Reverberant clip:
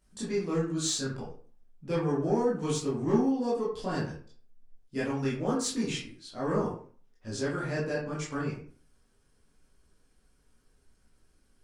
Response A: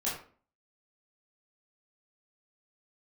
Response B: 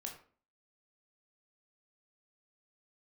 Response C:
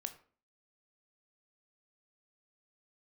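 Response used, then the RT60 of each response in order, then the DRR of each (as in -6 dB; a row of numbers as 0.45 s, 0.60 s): A; 0.45 s, 0.45 s, 0.45 s; -8.0 dB, 1.0 dB, 8.0 dB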